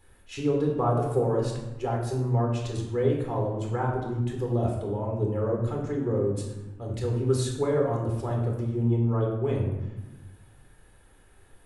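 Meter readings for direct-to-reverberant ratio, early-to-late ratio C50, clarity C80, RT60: -1.0 dB, 3.5 dB, 6.0 dB, 1.1 s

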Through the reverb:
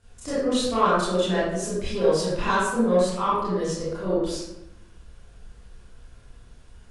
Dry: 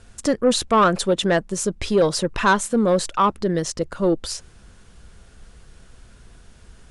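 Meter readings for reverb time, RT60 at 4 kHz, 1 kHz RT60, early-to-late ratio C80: 0.90 s, 0.55 s, 0.85 s, 1.5 dB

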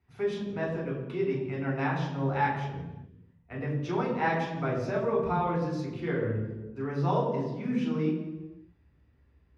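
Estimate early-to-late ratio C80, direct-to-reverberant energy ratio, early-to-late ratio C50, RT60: 5.0 dB, -4.5 dB, 3.5 dB, 1.1 s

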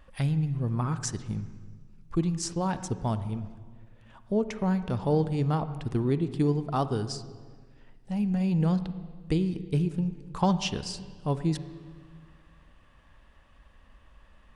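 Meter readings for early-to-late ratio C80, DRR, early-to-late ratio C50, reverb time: 14.0 dB, 12.0 dB, 12.5 dB, 1.7 s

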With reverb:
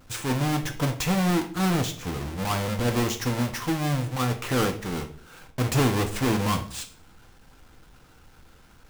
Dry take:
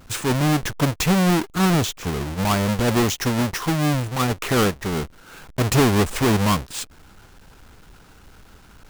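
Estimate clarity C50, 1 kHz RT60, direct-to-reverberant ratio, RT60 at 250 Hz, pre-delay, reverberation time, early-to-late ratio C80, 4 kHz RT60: 12.0 dB, 0.50 s, 5.0 dB, 0.60 s, 3 ms, 0.50 s, 16.5 dB, 0.40 s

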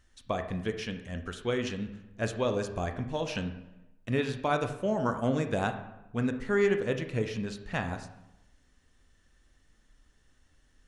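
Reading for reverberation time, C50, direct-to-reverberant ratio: 0.95 s, 9.5 dB, 6.5 dB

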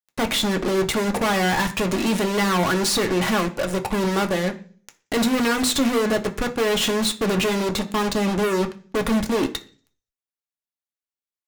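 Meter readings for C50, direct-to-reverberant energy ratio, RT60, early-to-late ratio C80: 15.5 dB, 4.0 dB, 0.40 s, 20.0 dB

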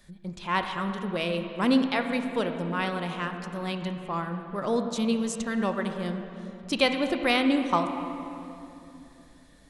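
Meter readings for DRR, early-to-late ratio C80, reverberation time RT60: 6.0 dB, 7.5 dB, 2.9 s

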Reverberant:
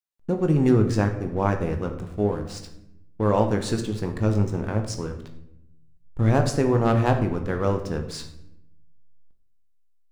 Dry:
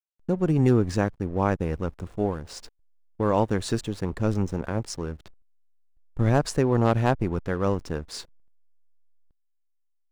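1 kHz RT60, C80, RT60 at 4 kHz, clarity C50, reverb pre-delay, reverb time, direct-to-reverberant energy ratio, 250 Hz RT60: 0.70 s, 11.5 dB, 0.55 s, 9.0 dB, 19 ms, 0.80 s, 5.0 dB, 1.3 s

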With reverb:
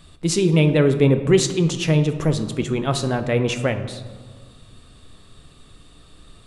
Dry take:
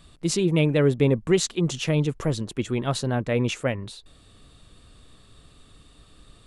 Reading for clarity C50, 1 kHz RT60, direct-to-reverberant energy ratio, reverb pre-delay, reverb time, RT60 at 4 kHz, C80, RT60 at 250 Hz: 10.5 dB, 1.7 s, 8.0 dB, 4 ms, 1.7 s, 0.80 s, 12.0 dB, 2.1 s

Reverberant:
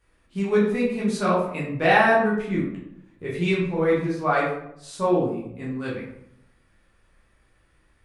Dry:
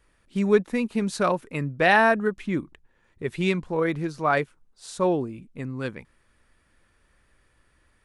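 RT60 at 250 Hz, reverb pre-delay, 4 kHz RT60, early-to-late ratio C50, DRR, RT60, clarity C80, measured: 1.0 s, 10 ms, 0.45 s, 3.0 dB, -6.5 dB, 0.75 s, 6.5 dB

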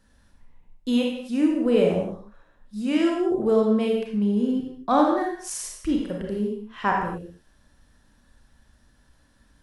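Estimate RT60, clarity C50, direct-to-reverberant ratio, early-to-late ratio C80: not exponential, 2.0 dB, -0.5 dB, 5.0 dB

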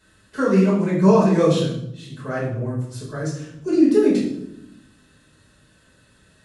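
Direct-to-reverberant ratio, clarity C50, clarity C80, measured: -7.0 dB, 3.5 dB, 7.0 dB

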